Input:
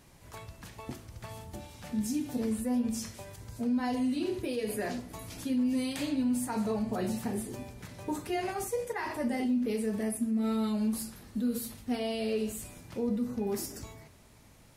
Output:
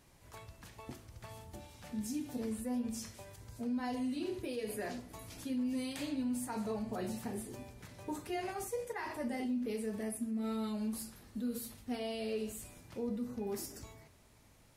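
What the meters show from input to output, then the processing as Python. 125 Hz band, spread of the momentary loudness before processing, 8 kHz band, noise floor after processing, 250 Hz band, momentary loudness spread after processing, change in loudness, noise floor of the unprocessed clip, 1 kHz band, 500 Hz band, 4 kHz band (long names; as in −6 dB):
−7.0 dB, 15 LU, −5.5 dB, −63 dBFS, −7.0 dB, 15 LU, −6.5 dB, −57 dBFS, −5.5 dB, −6.0 dB, −5.5 dB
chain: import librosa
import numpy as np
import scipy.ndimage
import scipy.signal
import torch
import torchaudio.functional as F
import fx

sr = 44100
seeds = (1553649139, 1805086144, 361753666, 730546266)

y = fx.peak_eq(x, sr, hz=180.0, db=-2.5, octaves=1.0)
y = F.gain(torch.from_numpy(y), -5.5).numpy()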